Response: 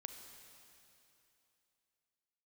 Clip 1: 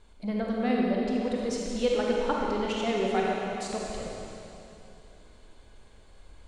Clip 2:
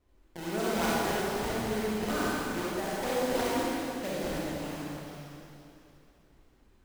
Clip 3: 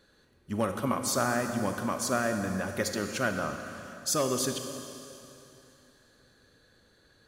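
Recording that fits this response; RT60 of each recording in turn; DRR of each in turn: 3; 2.9 s, 2.9 s, 3.0 s; -2.5 dB, -8.0 dB, 5.5 dB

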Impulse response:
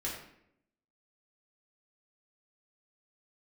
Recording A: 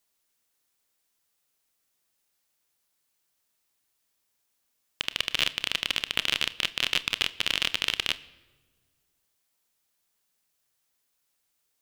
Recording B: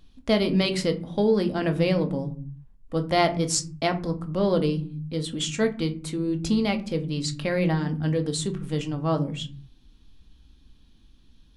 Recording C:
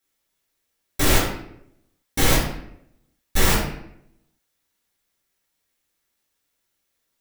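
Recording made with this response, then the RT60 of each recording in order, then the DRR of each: C; no single decay rate, 0.50 s, 0.75 s; 14.5 dB, 5.5 dB, -5.0 dB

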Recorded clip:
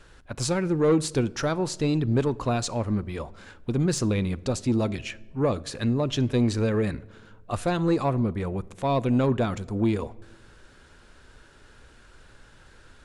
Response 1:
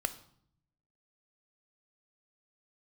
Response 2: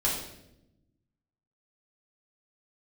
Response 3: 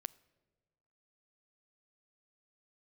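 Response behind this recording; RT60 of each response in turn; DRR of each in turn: 3; 0.65 s, 0.85 s, 1.4 s; 10.0 dB, -7.0 dB, 18.5 dB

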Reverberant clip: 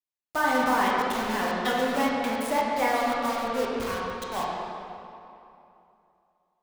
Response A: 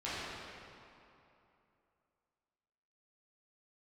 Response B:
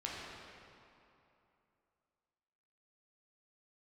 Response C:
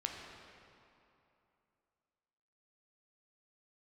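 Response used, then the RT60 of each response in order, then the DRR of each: B; 2.8 s, 2.8 s, 2.8 s; -12.0 dB, -5.0 dB, 0.5 dB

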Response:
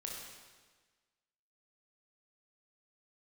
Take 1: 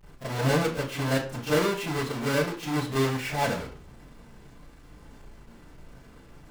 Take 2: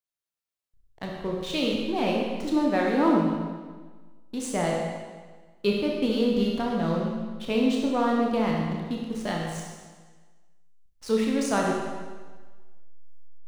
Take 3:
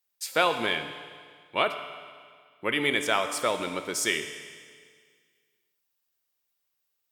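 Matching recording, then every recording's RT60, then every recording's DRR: 2; 0.40 s, 1.4 s, 1.9 s; -12.5 dB, -2.0 dB, 7.0 dB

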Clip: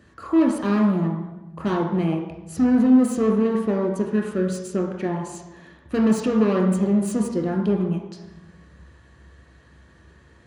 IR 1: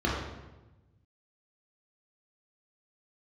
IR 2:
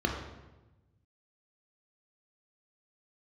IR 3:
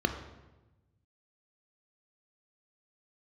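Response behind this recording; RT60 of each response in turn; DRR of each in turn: 2; 1.1 s, 1.1 s, 1.1 s; -5.0 dB, 1.0 dB, 6.0 dB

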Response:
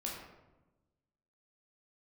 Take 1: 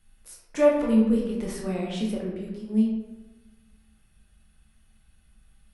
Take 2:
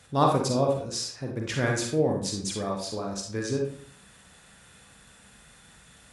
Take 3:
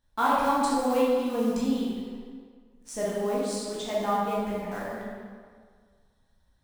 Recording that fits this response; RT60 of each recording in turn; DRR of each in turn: 1; 1.1 s, 0.55 s, 1.9 s; -3.0 dB, 0.5 dB, -6.5 dB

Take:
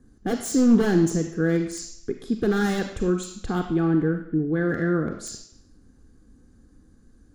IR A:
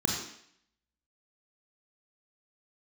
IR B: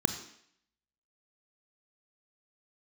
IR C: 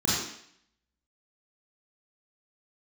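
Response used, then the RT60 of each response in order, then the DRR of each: B; 0.65 s, 0.65 s, 0.65 s; -1.5 dB, 7.0 dB, -9.0 dB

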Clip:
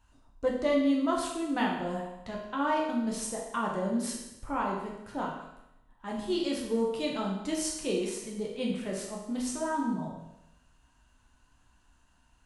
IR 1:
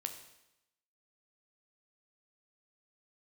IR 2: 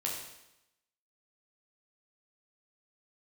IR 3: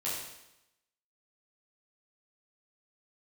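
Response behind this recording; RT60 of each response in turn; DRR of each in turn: 2; 0.90 s, 0.90 s, 0.90 s; 5.5 dB, -3.0 dB, -8.5 dB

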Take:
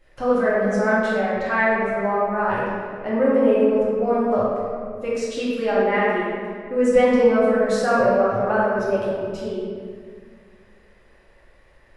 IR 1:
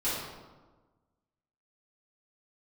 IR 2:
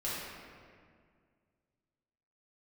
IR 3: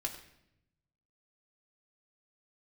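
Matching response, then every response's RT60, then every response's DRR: 2; 1.3 s, 2.0 s, 0.80 s; -13.0 dB, -9.5 dB, 0.5 dB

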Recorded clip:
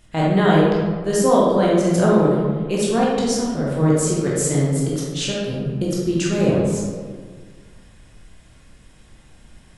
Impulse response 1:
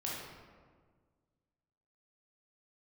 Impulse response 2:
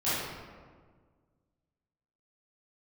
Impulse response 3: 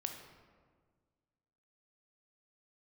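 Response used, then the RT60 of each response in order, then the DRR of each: 1; 1.6 s, 1.6 s, 1.6 s; -5.5 dB, -14.5 dB, 4.0 dB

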